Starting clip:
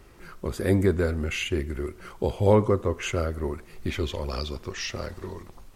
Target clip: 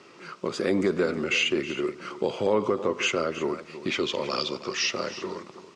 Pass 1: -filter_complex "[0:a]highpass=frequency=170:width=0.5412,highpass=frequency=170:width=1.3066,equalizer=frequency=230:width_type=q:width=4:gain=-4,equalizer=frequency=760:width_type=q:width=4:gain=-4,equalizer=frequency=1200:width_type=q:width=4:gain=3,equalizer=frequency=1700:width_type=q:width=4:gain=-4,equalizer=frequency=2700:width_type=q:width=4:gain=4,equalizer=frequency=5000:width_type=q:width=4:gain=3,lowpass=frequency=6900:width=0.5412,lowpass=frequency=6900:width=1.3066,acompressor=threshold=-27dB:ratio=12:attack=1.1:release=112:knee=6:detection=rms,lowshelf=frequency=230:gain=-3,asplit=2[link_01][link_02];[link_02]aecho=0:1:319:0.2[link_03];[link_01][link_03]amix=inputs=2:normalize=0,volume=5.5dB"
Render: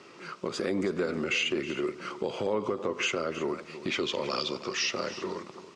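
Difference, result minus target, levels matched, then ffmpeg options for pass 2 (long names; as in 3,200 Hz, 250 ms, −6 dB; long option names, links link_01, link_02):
downward compressor: peak gain reduction +6 dB
-filter_complex "[0:a]highpass=frequency=170:width=0.5412,highpass=frequency=170:width=1.3066,equalizer=frequency=230:width_type=q:width=4:gain=-4,equalizer=frequency=760:width_type=q:width=4:gain=-4,equalizer=frequency=1200:width_type=q:width=4:gain=3,equalizer=frequency=1700:width_type=q:width=4:gain=-4,equalizer=frequency=2700:width_type=q:width=4:gain=4,equalizer=frequency=5000:width_type=q:width=4:gain=3,lowpass=frequency=6900:width=0.5412,lowpass=frequency=6900:width=1.3066,acompressor=threshold=-20.5dB:ratio=12:attack=1.1:release=112:knee=6:detection=rms,lowshelf=frequency=230:gain=-3,asplit=2[link_01][link_02];[link_02]aecho=0:1:319:0.2[link_03];[link_01][link_03]amix=inputs=2:normalize=0,volume=5.5dB"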